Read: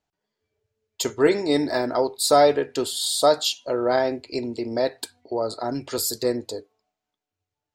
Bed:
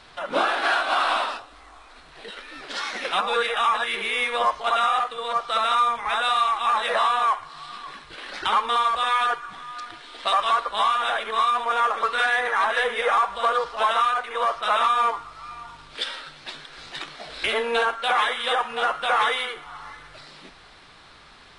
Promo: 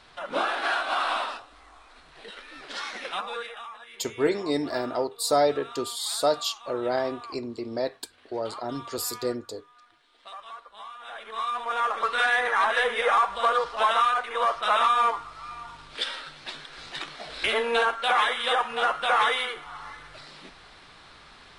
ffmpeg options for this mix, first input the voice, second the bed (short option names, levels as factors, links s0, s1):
-filter_complex "[0:a]adelay=3000,volume=0.531[s0];[1:a]volume=5.96,afade=t=out:st=2.82:d=0.86:silence=0.149624,afade=t=in:st=10.99:d=1.31:silence=0.1[s1];[s0][s1]amix=inputs=2:normalize=0"